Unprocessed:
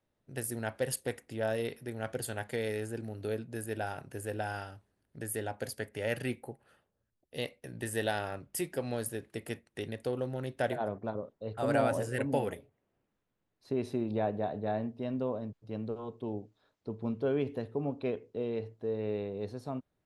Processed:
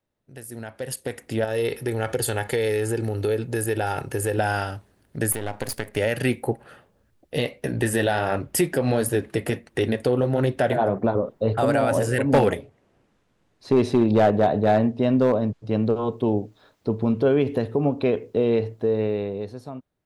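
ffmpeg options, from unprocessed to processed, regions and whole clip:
-filter_complex "[0:a]asettb=1/sr,asplit=3[a][b][c];[a]atrim=end=1.444[d];[b]atrim=start=1.44:end=4.38,asetpts=PTS-STARTPTS,afade=t=in:d=0.004:c=qsin,afade=t=out:st=2.936:d=0.004:c=qsin,aecho=1:1:2.3:0.44,atrim=end_sample=129654,acompressor=threshold=-37dB:ratio=3:attack=3.2:release=140:knee=1:detection=peak[e];[c]atrim=start=4.376[f];[d][e]acrossfade=d=0.004:c1=hsin:c2=qsin[g];[g][f]acrossfade=d=0.004:c1=qsin:c2=hsin,asettb=1/sr,asplit=3[h][i][j];[h]atrim=end=5.324[k];[i]atrim=start=5.32:end=5.97,asetpts=PTS-STARTPTS,afade=t=in:d=0.004:c=qsin,afade=t=out:st=0.646:d=0.004:c=qsin,aeval=exprs='if(lt(val(0),0),0.251*val(0),val(0))':c=same,acompressor=threshold=-38dB:ratio=6:attack=3.2:release=140:knee=1:detection=peak[l];[j]atrim=start=5.966[m];[k][l]acrossfade=d=0.004:c1=hsin:c2=qsin[n];[n][m]acrossfade=d=0.004:c1=qsin:c2=hsin,asettb=1/sr,asplit=3[o][p][q];[o]atrim=end=6.474[r];[p]atrim=start=6.47:end=11.61,asetpts=PTS-STARTPTS,afade=t=in:d=0.004:c=qsin,afade=t=out:st=5.136:d=0.004:c=qsin,highshelf=f=3.5k:g=-6.5,acontrast=80,flanger=delay=2:depth=6.4:regen=-51:speed=1.5:shape=triangular[s];[q]atrim=start=11.606[t];[r][s]acrossfade=d=0.004:c1=hsin:c2=qsin[u];[u][t]acrossfade=d=0.004:c1=qsin:c2=hsin,asettb=1/sr,asplit=3[v][w][x];[v]atrim=end=12.224[y];[w]atrim=start=12.22:end=16.12,asetpts=PTS-STARTPTS,afade=t=in:d=0.004:c=qsin,afade=t=out:st=3.896:d=0.004:c=qsin,lowpass=8.3k,volume=26dB,asoftclip=hard,volume=-26dB[z];[x]atrim=start=16.116[aa];[y][z]acrossfade=d=0.004:c1=hsin:c2=qsin[ab];[ab][aa]acrossfade=d=0.004:c1=qsin:c2=hsin,alimiter=level_in=3dB:limit=-24dB:level=0:latency=1:release=162,volume=-3dB,dynaudnorm=f=130:g=17:m=16dB"

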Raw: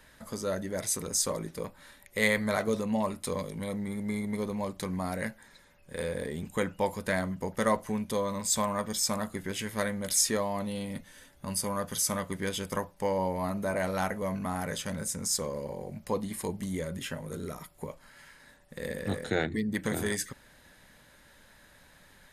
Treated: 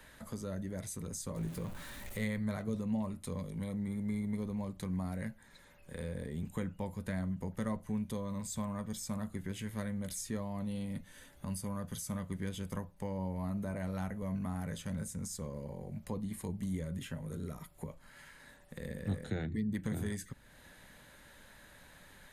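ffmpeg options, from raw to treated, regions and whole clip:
-filter_complex "[0:a]asettb=1/sr,asplit=3[a][b][c];[a]atrim=end=1.364[d];[b]atrim=start=1.36:end=2.25,asetpts=PTS-STARTPTS,afade=t=in:d=0.004:c=qsin,afade=t=out:st=0.886:d=0.004:c=qsin,aeval=exprs='val(0)+0.5*0.0133*sgn(val(0))':c=same,asplit=2[e][f];[f]adelay=17,volume=-11.5dB[g];[e][g]amix=inputs=2:normalize=0,atrim=end_sample=39249[h];[c]atrim=start=2.246[i];[d][h]acrossfade=d=0.004:c1=hsin:c2=qsin[j];[j][i]acrossfade=d=0.004:c1=qsin:c2=hsin,equalizer=f=5.2k:w=4.8:g=-5,acrossover=split=210[k][l];[l]acompressor=threshold=-55dB:ratio=2[m];[k][m]amix=inputs=2:normalize=0,volume=1dB"

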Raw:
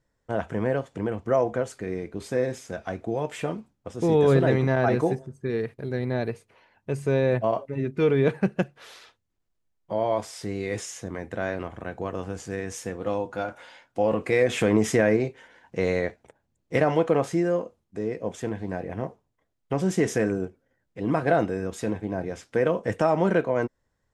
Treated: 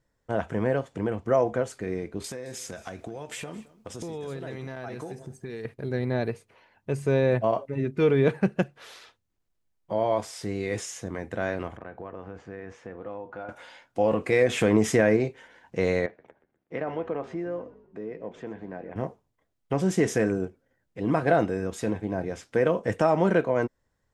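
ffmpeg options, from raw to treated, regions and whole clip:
-filter_complex "[0:a]asettb=1/sr,asplit=3[a][b][c];[a]atrim=end=2.244[d];[b]atrim=start=2.24:end=5.65,asetpts=PTS-STARTPTS,afade=t=in:d=0.004:c=qsin,afade=t=out:st=3.406:d=0.004:c=qsin,highshelf=f=2.5k:g=10,acompressor=threshold=-33dB:ratio=8:attack=3.2:release=140:knee=1:detection=peak,aecho=1:1:217:0.106,atrim=end_sample=150381[e];[c]atrim=start=5.646[f];[d][e]acrossfade=d=0.004:c1=hsin:c2=qsin[g];[g][f]acrossfade=d=0.004:c1=qsin:c2=hsin,asettb=1/sr,asplit=3[h][i][j];[h]atrim=end=11.774[k];[i]atrim=start=11.77:end=13.49,asetpts=PTS-STARTPTS,afade=t=in:d=0.004:c=qsin,afade=t=out:st=1.716:d=0.004:c=qsin,lowpass=1.8k,lowshelf=f=340:g=-6.5,acompressor=threshold=-36dB:ratio=2.5:attack=3.2:release=140:knee=1:detection=peak[l];[j]atrim=start=13.486[m];[k][l]acrossfade=d=0.004:c1=hsin:c2=qsin[n];[n][m]acrossfade=d=0.004:c1=qsin:c2=hsin,asettb=1/sr,asplit=3[o][p][q];[o]atrim=end=16.064[r];[p]atrim=start=16.06:end=18.96,asetpts=PTS-STARTPTS,afade=t=in:d=0.004:c=qsin,afade=t=out:st=2.896:d=0.004:c=qsin,acompressor=threshold=-42dB:ratio=1.5:attack=3.2:release=140:knee=1:detection=peak,highpass=170,lowpass=2.6k,asplit=5[s][t][u][v][w];[t]adelay=123,afreqshift=-48,volume=-17dB[x];[u]adelay=246,afreqshift=-96,volume=-24.5dB[y];[v]adelay=369,afreqshift=-144,volume=-32.1dB[z];[w]adelay=492,afreqshift=-192,volume=-39.6dB[aa];[s][x][y][z][aa]amix=inputs=5:normalize=0,atrim=end_sample=127890[ab];[q]atrim=start=18.956[ac];[r][ab]acrossfade=d=0.004:c1=hsin:c2=qsin[ad];[ad][ac]acrossfade=d=0.004:c1=qsin:c2=hsin"

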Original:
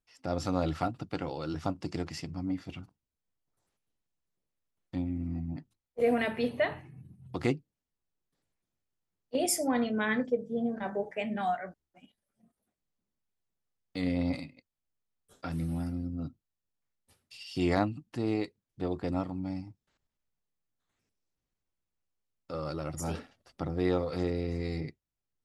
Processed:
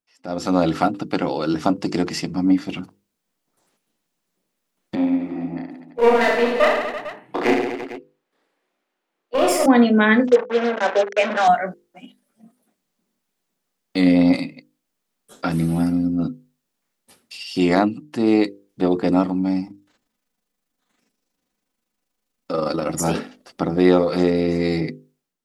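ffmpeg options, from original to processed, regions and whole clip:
-filter_complex "[0:a]asettb=1/sr,asplit=3[a][b][c];[a]atrim=end=4.954[d];[b]atrim=start=4.95:end=9.66,asetpts=PTS-STARTPTS,afade=t=in:d=0.004:c=qsin,afade=t=out:st=4.706:d=0.004:c=qsin,acrossover=split=310 3300:gain=0.0794 1 0.2[e][f][g];[e][f][g]amix=inputs=3:normalize=0,aeval=exprs='clip(val(0),-1,0.0141)':c=same,aecho=1:1:30|67.5|114.4|173|246.2|337.8|452.2:0.794|0.631|0.501|0.398|0.316|0.251|0.2,atrim=end_sample=207711[h];[c]atrim=start=9.656[i];[d][h]acrossfade=d=0.004:c1=hsin:c2=qsin[j];[j][i]acrossfade=d=0.004:c1=qsin:c2=hsin,asettb=1/sr,asplit=3[k][l][m];[k]atrim=end=10.274[n];[l]atrim=start=10.27:end=11.48,asetpts=PTS-STARTPTS,afade=t=in:d=0.004:c=qsin,afade=t=out:st=1.206:d=0.004:c=qsin,acrusher=bits=5:mix=0:aa=0.5,highpass=450,equalizer=f=530:t=q:w=4:g=7,equalizer=f=1.5k:t=q:w=4:g=4,equalizer=f=4.6k:t=q:w=4:g=-6,lowpass=f=6.3k:w=0.5412,lowpass=f=6.3k:w=1.3066[o];[m]atrim=start=11.476[p];[n][o]acrossfade=d=0.004:c1=hsin:c2=qsin[q];[q][p]acrossfade=d=0.004:c1=qsin:c2=hsin,asettb=1/sr,asplit=3[r][s][t];[r]atrim=end=19.674[u];[s]atrim=start=19.67:end=22.89,asetpts=PTS-STARTPTS,afade=t=in:d=0.004:c=qsin,afade=t=out:st=3.216:d=0.004:c=qsin,aecho=1:1:4:0.36,atrim=end_sample=142002,tremolo=f=25:d=0.519[v];[t]atrim=start=22.886[w];[u][v]acrossfade=d=0.004:c1=hsin:c2=qsin[x];[x][w]acrossfade=d=0.004:c1=qsin:c2=hsin,lowshelf=f=140:t=q:w=1.5:g=-12.5,bandreject=f=50:t=h:w=6,bandreject=f=100:t=h:w=6,bandreject=f=150:t=h:w=6,bandreject=f=200:t=h:w=6,bandreject=f=250:t=h:w=6,bandreject=f=300:t=h:w=6,bandreject=f=350:t=h:w=6,bandreject=f=400:t=h:w=6,bandreject=f=450:t=h:w=6,bandreject=f=500:t=h:w=6,dynaudnorm=f=120:g=7:m=15dB"

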